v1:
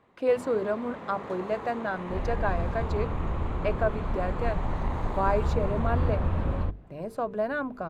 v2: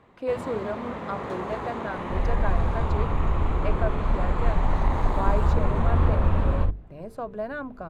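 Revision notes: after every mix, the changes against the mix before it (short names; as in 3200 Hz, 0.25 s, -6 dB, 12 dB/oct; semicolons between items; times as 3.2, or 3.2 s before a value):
speech -3.5 dB; first sound +6.0 dB; master: add low shelf 74 Hz +9.5 dB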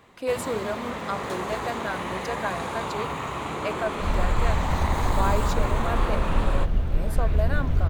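second sound: entry +1.90 s; master: remove LPF 1200 Hz 6 dB/oct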